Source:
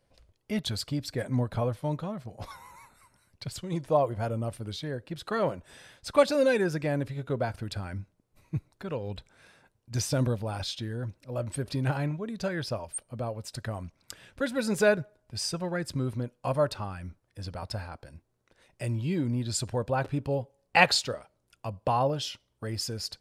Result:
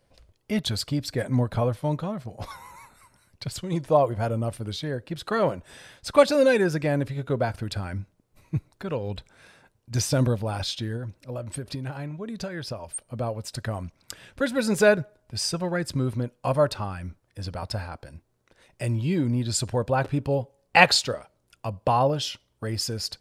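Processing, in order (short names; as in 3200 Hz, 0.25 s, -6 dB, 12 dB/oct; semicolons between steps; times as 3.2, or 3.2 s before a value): 10.96–13.07 compressor 12:1, threshold -34 dBFS, peak gain reduction 12 dB; gain +4.5 dB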